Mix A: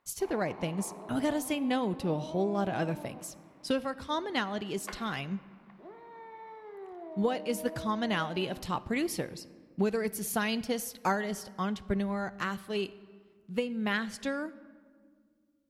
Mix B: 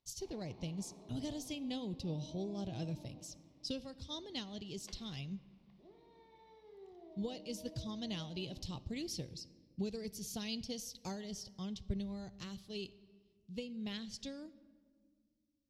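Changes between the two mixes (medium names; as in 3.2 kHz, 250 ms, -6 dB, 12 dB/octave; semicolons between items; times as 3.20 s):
first sound: send +6.0 dB; master: add FFT filter 120 Hz 0 dB, 200 Hz -9 dB, 500 Hz -14 dB, 980 Hz -21 dB, 1.5 kHz -27 dB, 3.5 kHz -4 dB, 5.6 kHz 0 dB, 9.7 kHz -15 dB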